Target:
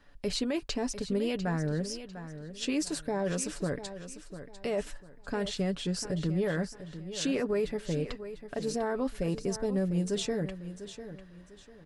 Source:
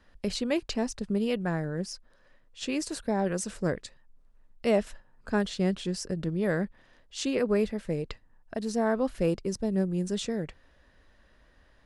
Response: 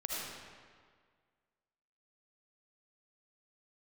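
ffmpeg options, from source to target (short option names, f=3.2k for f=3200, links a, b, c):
-filter_complex "[0:a]aecho=1:1:7:0.46,alimiter=limit=-22dB:level=0:latency=1:release=19,asplit=2[a][b];[b]aecho=0:1:698|1396|2094:0.251|0.0754|0.0226[c];[a][c]amix=inputs=2:normalize=0"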